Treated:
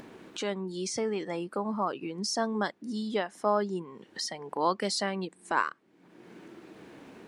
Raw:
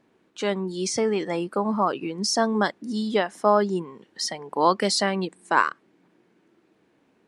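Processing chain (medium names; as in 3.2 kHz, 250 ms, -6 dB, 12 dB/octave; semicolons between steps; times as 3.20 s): upward compressor, threshold -23 dBFS; trim -7.5 dB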